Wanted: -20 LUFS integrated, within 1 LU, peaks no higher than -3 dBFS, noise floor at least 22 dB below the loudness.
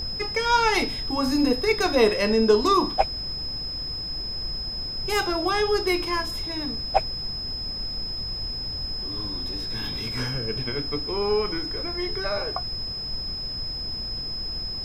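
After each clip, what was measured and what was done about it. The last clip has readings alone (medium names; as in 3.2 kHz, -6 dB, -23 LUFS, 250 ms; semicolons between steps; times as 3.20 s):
steady tone 5.1 kHz; tone level -30 dBFS; noise floor -32 dBFS; noise floor target -48 dBFS; loudness -25.5 LUFS; peak level -5.0 dBFS; loudness target -20.0 LUFS
-> band-stop 5.1 kHz, Q 30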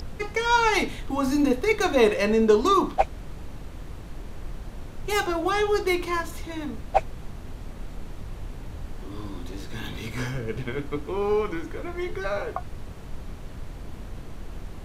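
steady tone not found; noise floor -40 dBFS; noise floor target -47 dBFS
-> noise print and reduce 7 dB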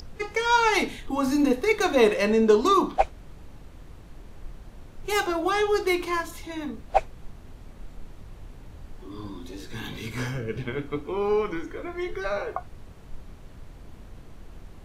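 noise floor -46 dBFS; noise floor target -47 dBFS
-> noise print and reduce 6 dB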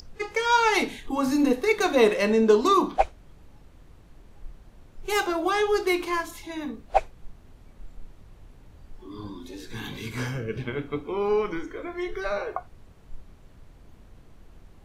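noise floor -52 dBFS; loudness -25.0 LUFS; peak level -5.0 dBFS; loudness target -20.0 LUFS
-> trim +5 dB; peak limiter -3 dBFS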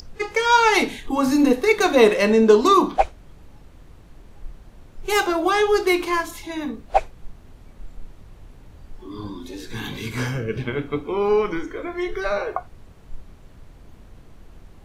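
loudness -20.0 LUFS; peak level -3.0 dBFS; noise floor -47 dBFS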